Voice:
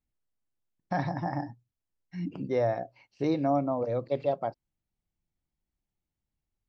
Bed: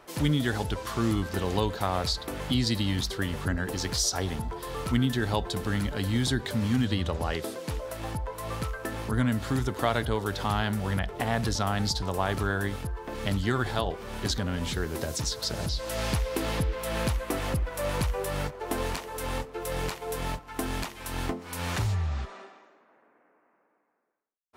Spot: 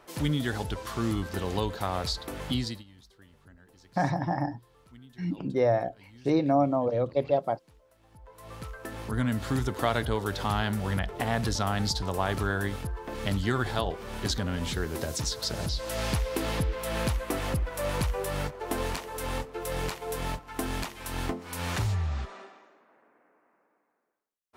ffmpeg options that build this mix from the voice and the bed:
ffmpeg -i stem1.wav -i stem2.wav -filter_complex "[0:a]adelay=3050,volume=3dB[link_01];[1:a]volume=23.5dB,afade=type=out:start_time=2.54:duration=0.3:silence=0.0630957,afade=type=in:start_time=8.1:duration=1.4:silence=0.0501187[link_02];[link_01][link_02]amix=inputs=2:normalize=0" out.wav

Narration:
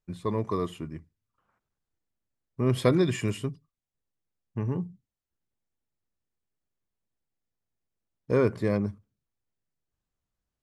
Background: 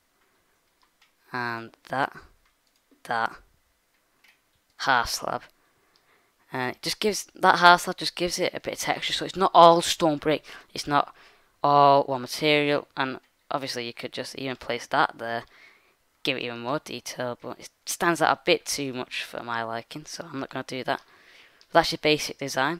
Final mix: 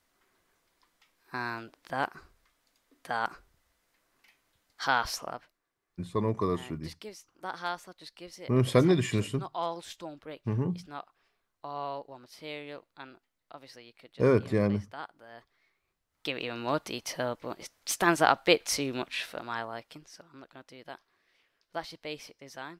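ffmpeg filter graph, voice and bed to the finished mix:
ffmpeg -i stem1.wav -i stem2.wav -filter_complex "[0:a]adelay=5900,volume=0dB[link_01];[1:a]volume=13dB,afade=type=out:start_time=5.03:duration=0.57:silence=0.188365,afade=type=in:start_time=16.09:duration=0.51:silence=0.125893,afade=type=out:start_time=18.95:duration=1.31:silence=0.158489[link_02];[link_01][link_02]amix=inputs=2:normalize=0" out.wav

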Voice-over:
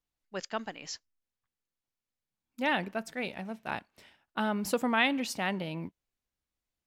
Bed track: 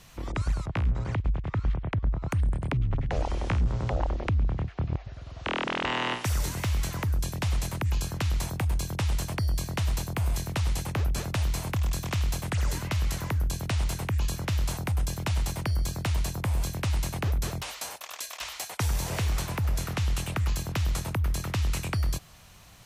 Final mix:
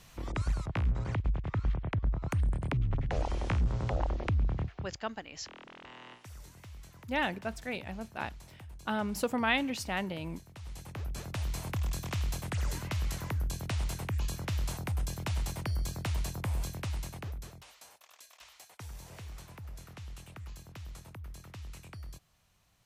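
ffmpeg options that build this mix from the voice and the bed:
ffmpeg -i stem1.wav -i stem2.wav -filter_complex "[0:a]adelay=4500,volume=-2dB[link_01];[1:a]volume=12.5dB,afade=type=out:start_time=4.65:duration=0.26:silence=0.125893,afade=type=in:start_time=10.53:duration=1.18:silence=0.158489,afade=type=out:start_time=16.53:duration=1.03:silence=0.237137[link_02];[link_01][link_02]amix=inputs=2:normalize=0" out.wav

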